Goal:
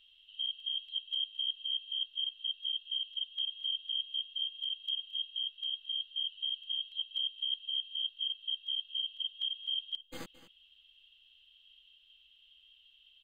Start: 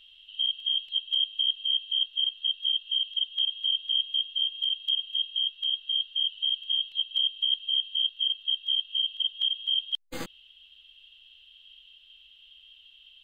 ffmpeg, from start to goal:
ffmpeg -i in.wav -af "aecho=1:1:219:0.15,volume=-8.5dB" out.wav

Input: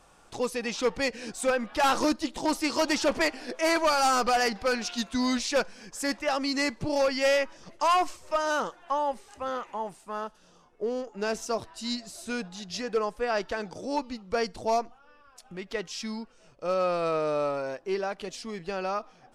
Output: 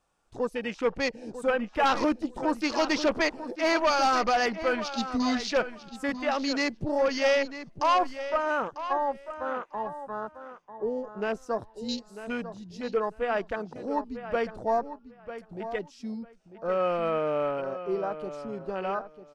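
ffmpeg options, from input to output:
ffmpeg -i in.wav -filter_complex "[0:a]afwtdn=0.0158,asplit=2[link_01][link_02];[link_02]adelay=946,lowpass=frequency=4300:poles=1,volume=-11.5dB,asplit=2[link_03][link_04];[link_04]adelay=946,lowpass=frequency=4300:poles=1,volume=0.18[link_05];[link_03][link_05]amix=inputs=2:normalize=0[link_06];[link_01][link_06]amix=inputs=2:normalize=0" out.wav

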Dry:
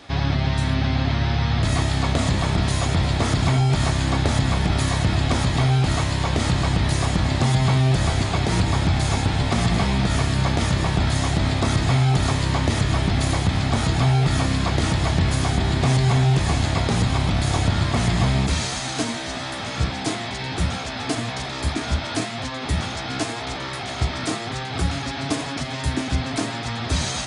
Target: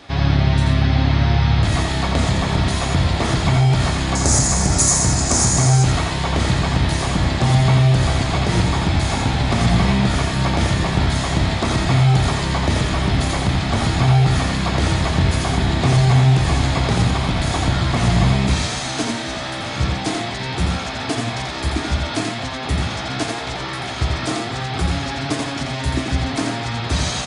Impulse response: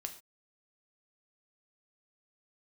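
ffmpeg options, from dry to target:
-filter_complex "[0:a]asettb=1/sr,asplit=3[link_01][link_02][link_03];[link_01]atrim=end=4.154[link_04];[link_02]atrim=start=4.15:end=5.84,asetpts=PTS-STARTPTS,afade=type=in:duration=0.004:curve=qsin,afade=type=out:start_time=1.686:duration=0.004:curve=qsin,highshelf=frequency=4800:width_type=q:width=3:gain=12.5[link_05];[link_03]atrim=start=5.836[link_06];[link_04][link_05]acrossfade=duration=0.004:curve1=hsin:curve2=qsin[link_07];[link_07][link_06]acrossfade=duration=0.004:curve1=qsin:curve2=hsin,aecho=1:1:86:0.596,asplit=2[link_08][link_09];[1:a]atrim=start_sample=2205,lowpass=6900[link_10];[link_09][link_10]afir=irnorm=-1:irlink=0,volume=-8.5dB[link_11];[link_08][link_11]amix=inputs=2:normalize=0"

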